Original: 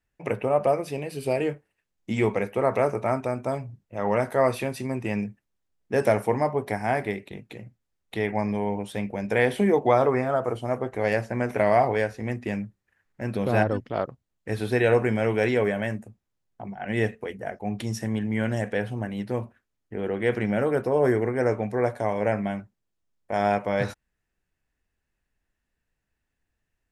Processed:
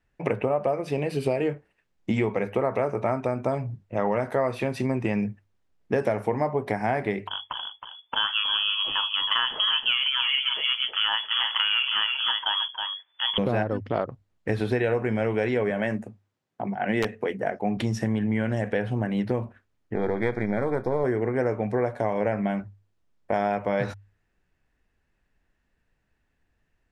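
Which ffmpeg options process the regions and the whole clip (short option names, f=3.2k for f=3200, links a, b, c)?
-filter_complex "[0:a]asettb=1/sr,asplit=3[a][b][c];[a]atrim=end=7.274[d];[b]atrim=start=7.27:end=13.38,asetpts=PTS-STARTPTS,afade=t=in:d=0.004:c=qsin,afade=t=out:st=6.106:d=0.004:c=qsin,equalizer=f=2.6k:w=4.6:g=10,aecho=1:1:318:0.398,atrim=end_sample=269451,lowpass=f=3k:t=q:w=0.5098,lowpass=f=3k:t=q:w=0.6013,lowpass=f=3k:t=q:w=0.9,lowpass=f=3k:t=q:w=2.563,afreqshift=-3500[e];[c]atrim=start=13.376[f];[d][e]acrossfade=d=0.004:c1=hsin:c2=qsin[g];[g][f]acrossfade=d=0.004:c1=qsin:c2=hsin,asettb=1/sr,asplit=3[h][i][j];[h]atrim=end=15.704[k];[i]atrim=start=15.7:end=17.77,asetpts=PTS-STARTPTS,afade=t=in:d=0.004:c=qsin,afade=t=out:st=2.066:d=0.004:c=qsin,highpass=150,aeval=exprs='(mod(4.47*val(0)+1,2)-1)/4.47':c=same[l];[j]atrim=start=17.766[m];[k][l]acrossfade=d=0.004:c1=hsin:c2=qsin[n];[n][m]acrossfade=d=0.004:c1=qsin:c2=hsin,asettb=1/sr,asplit=3[o][p][q];[o]atrim=end=19.954[r];[p]atrim=start=19.95:end=21.04,asetpts=PTS-STARTPTS,afade=t=in:d=0.004:c=qsin,afade=t=out:st=1.086:d=0.004:c=qsin,aeval=exprs='if(lt(val(0),0),0.447*val(0),val(0))':c=same,asuperstop=centerf=2800:order=12:qfactor=3.5[s];[q]atrim=start=21.036[t];[r][s]acrossfade=d=0.004:c1=hsin:c2=qsin[u];[u][t]acrossfade=d=0.004:c1=qsin:c2=hsin,aemphasis=mode=reproduction:type=50fm,bandreject=f=50:t=h:w=6,bandreject=f=100:t=h:w=6,acompressor=threshold=-29dB:ratio=6,volume=7.5dB"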